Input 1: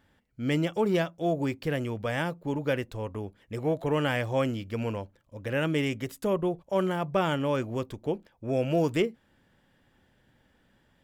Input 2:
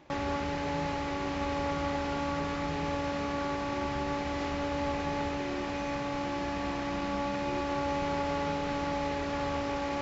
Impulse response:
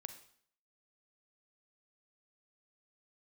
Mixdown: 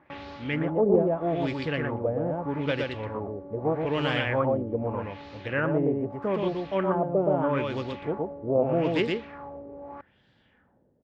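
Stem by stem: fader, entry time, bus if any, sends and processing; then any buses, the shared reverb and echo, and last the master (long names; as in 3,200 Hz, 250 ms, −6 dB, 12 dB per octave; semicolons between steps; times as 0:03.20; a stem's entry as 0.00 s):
−10.0 dB, 0.00 s, no send, echo send −3 dB, automatic gain control gain up to 8.5 dB
−5.0 dB, 0.00 s, no send, no echo send, automatic ducking −7 dB, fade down 0.40 s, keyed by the first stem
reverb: not used
echo: single-tap delay 119 ms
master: high-pass filter 58 Hz; auto-filter low-pass sine 0.8 Hz 470–4,300 Hz; highs frequency-modulated by the lows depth 0.16 ms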